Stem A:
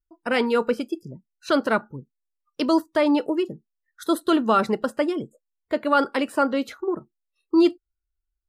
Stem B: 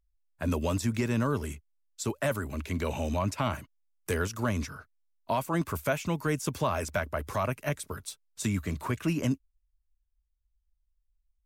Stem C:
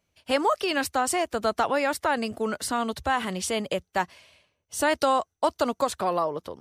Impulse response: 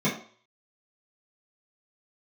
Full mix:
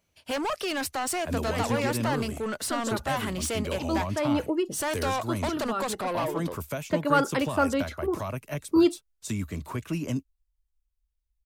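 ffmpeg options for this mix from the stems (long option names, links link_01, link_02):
-filter_complex "[0:a]adelay=1200,volume=-3dB[link_01];[1:a]equalizer=frequency=1600:width=1.5:gain=-3.5,acrossover=split=270|3000[link_02][link_03][link_04];[link_03]acompressor=threshold=-29dB:ratio=6[link_05];[link_02][link_05][link_04]amix=inputs=3:normalize=0,adelay=850,volume=-1.5dB[link_06];[2:a]highshelf=frequency=8900:gain=4.5,asoftclip=type=tanh:threshold=-27dB,volume=1dB,asplit=2[link_07][link_08];[link_08]apad=whole_len=431481[link_09];[link_01][link_09]sidechaincompress=threshold=-39dB:ratio=6:attack=16:release=540[link_10];[link_10][link_06][link_07]amix=inputs=3:normalize=0"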